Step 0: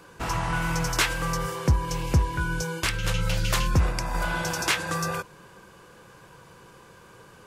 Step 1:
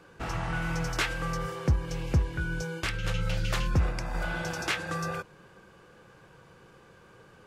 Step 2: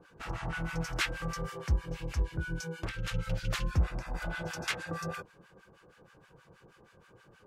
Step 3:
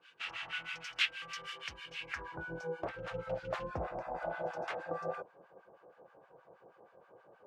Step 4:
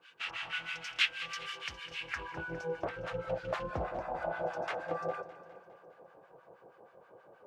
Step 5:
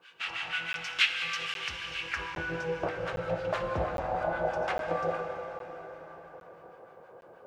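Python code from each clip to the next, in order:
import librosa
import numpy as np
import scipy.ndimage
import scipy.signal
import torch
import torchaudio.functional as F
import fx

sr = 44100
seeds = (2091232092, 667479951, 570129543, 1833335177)

y1 = fx.high_shelf(x, sr, hz=6000.0, db=-11.5)
y1 = fx.notch(y1, sr, hz=1000.0, q=9.3)
y1 = y1 * librosa.db_to_amplitude(-3.5)
y2 = fx.harmonic_tremolo(y1, sr, hz=6.3, depth_pct=100, crossover_hz=1000.0)
y3 = fx.filter_sweep_bandpass(y2, sr, from_hz=2900.0, to_hz=660.0, start_s=1.97, end_s=2.47, q=2.7)
y3 = fx.rider(y3, sr, range_db=3, speed_s=0.5)
y3 = y3 * librosa.db_to_amplitude(7.5)
y4 = fx.echo_feedback(y3, sr, ms=204, feedback_pct=57, wet_db=-15)
y4 = y4 * librosa.db_to_amplitude(2.5)
y5 = fx.rev_plate(y4, sr, seeds[0], rt60_s=4.9, hf_ratio=0.75, predelay_ms=0, drr_db=4.0)
y5 = fx.buffer_crackle(y5, sr, first_s=0.73, period_s=0.81, block=512, kind='zero')
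y5 = y5 * librosa.db_to_amplitude(3.5)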